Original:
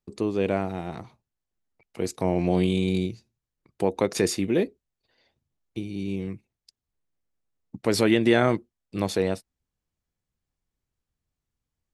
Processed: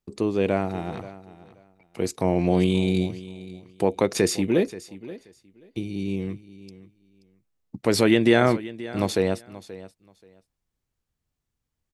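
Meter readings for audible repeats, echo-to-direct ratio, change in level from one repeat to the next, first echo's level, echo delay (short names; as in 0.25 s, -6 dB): 2, -17.0 dB, -15.0 dB, -17.0 dB, 0.53 s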